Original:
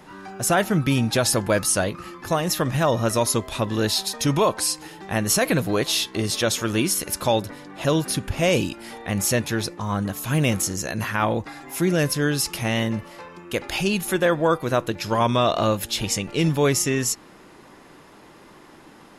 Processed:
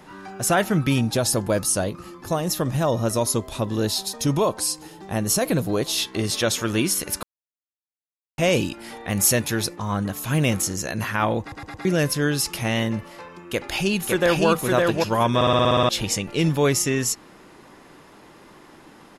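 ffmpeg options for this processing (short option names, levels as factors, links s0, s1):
-filter_complex "[0:a]asettb=1/sr,asplit=3[s0][s1][s2];[s0]atrim=end=1.014[s3];[s1]atrim=start=1.01:end=5.98,asetpts=PTS-STARTPTS,afade=t=in:d=0.004:c=qsin,afade=t=out:st=4.966:d=0.004:c=qsin,equalizer=f=2000:t=o:w=1.8:g=-7.5[s4];[s2]atrim=start=5.976[s5];[s3][s4]acrossfade=d=0.004:c1=hsin:c2=qsin[s6];[s6][s5]acrossfade=d=0.004:c1=qsin:c2=hsin,asettb=1/sr,asplit=3[s7][s8][s9];[s7]atrim=end=9.104[s10];[s8]atrim=start=9.1:end=9.76,asetpts=PTS-STARTPTS,afade=t=in:d=0.004:c=qsin,afade=t=out:st=0.656:d=0.004:c=qsin,highshelf=f=7900:g=9.5[s11];[s9]atrim=start=9.756[s12];[s10][s11]acrossfade=d=0.004:c1=hsin:c2=qsin[s13];[s13][s12]acrossfade=d=0.004:c1=qsin:c2=hsin,asplit=2[s14][s15];[s15]afade=t=in:st=13.45:d=0.01,afade=t=out:st=14.47:d=0.01,aecho=0:1:560|1120|1680|2240:0.794328|0.198582|0.0496455|0.0124114[s16];[s14][s16]amix=inputs=2:normalize=0,asplit=16[s17][s18][s19][s20][s21][s22][s23][s24][s25][s26][s27][s28][s29][s30][s31][s32];[s17]atrim=end=7.23,asetpts=PTS-STARTPTS,afade=t=out:st=7.226:d=0.004:c=hsin[s33];[s18]atrim=start=7.23:end=8.38,asetpts=PTS-STARTPTS,volume=0[s34];[s19]atrim=start=8.38:end=11.522,asetpts=PTS-STARTPTS,afade=t=in:d=0.004:c=hsin[s35];[s20]atrim=start=11.408:end=11.522[s36];[s21]atrim=start=11.408:end=11.522[s37];[s22]atrim=start=11.408:end=11.522[s38];[s23]atrim=start=11.848:end=15.412[s39];[s24]atrim=start=15.348:end=15.412[s40];[s25]atrim=start=15.348:end=15.412[s41];[s26]atrim=start=15.348:end=15.412[s42];[s27]atrim=start=15.348:end=15.412[s43];[s28]atrim=start=15.348:end=15.412[s44];[s29]atrim=start=15.348:end=15.412[s45];[s30]atrim=start=15.348:end=15.412[s46];[s31]atrim=start=15.348:end=15.412[s47];[s32]atrim=start=15.888[s48];[s33][s34][s35]concat=n=3:v=0:a=1[s49];[s49][s36]acrossfade=d=0.004:c1=hsin:c2=hsin[s50];[s50][s37]acrossfade=d=0.004:c1=hsin:c2=hsin[s51];[s51][s38]acrossfade=d=0.004:c1=hsin:c2=hsin[s52];[s52][s39]acrossfade=d=0.004:c1=hsin:c2=hsin[s53];[s53][s40]acrossfade=d=0.004:c1=hsin:c2=hsin[s54];[s54][s41]acrossfade=d=0.004:c1=hsin:c2=hsin[s55];[s55][s42]acrossfade=d=0.004:c1=hsin:c2=hsin[s56];[s56][s43]acrossfade=d=0.004:c1=hsin:c2=hsin[s57];[s57][s44]acrossfade=d=0.004:c1=hsin:c2=hsin[s58];[s58][s45]acrossfade=d=0.004:c1=hsin:c2=hsin[s59];[s59][s46]acrossfade=d=0.004:c1=hsin:c2=hsin[s60];[s60][s47]acrossfade=d=0.004:c1=hsin:c2=hsin[s61];[s61][s48]acrossfade=d=0.004:c1=hsin:c2=hsin"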